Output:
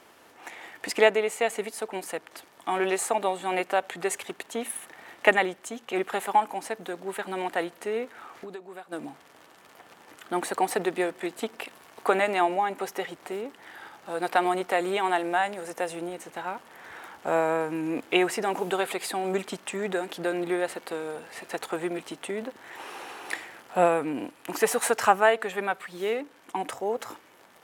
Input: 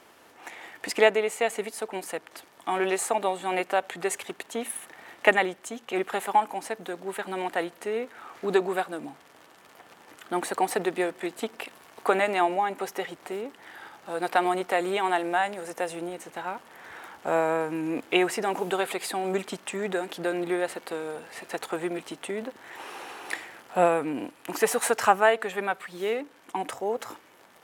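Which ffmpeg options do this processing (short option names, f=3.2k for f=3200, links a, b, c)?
-filter_complex "[0:a]asplit=3[a][b][c];[a]afade=t=out:st=8.25:d=0.02[d];[b]acompressor=threshold=-40dB:ratio=5,afade=t=in:st=8.25:d=0.02,afade=t=out:st=8.91:d=0.02[e];[c]afade=t=in:st=8.91:d=0.02[f];[d][e][f]amix=inputs=3:normalize=0"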